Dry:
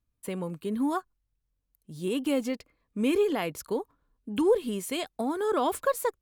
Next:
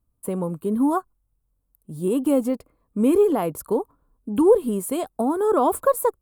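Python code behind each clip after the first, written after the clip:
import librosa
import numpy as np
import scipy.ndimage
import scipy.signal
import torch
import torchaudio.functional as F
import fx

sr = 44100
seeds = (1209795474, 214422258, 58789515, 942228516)

y = fx.band_shelf(x, sr, hz=3300.0, db=-14.0, octaves=2.3)
y = y * 10.0 ** (7.5 / 20.0)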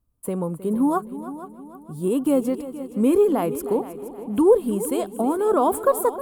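y = fx.echo_heads(x, sr, ms=157, heads='second and third', feedback_pct=44, wet_db=-15)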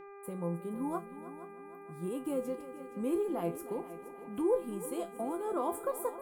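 y = fx.dmg_buzz(x, sr, base_hz=400.0, harmonics=6, level_db=-34.0, tilt_db=-8, odd_only=False)
y = fx.comb_fb(y, sr, f0_hz=170.0, decay_s=0.23, harmonics='all', damping=0.0, mix_pct=80)
y = y * 10.0 ** (-5.5 / 20.0)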